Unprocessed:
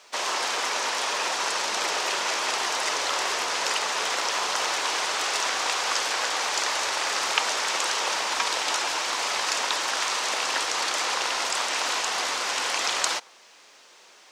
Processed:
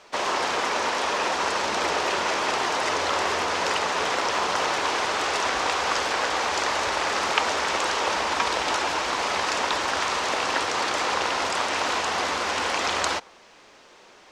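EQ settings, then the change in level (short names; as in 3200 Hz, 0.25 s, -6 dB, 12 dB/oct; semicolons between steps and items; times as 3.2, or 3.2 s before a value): RIAA curve playback; high shelf 7500 Hz +5 dB; +3.5 dB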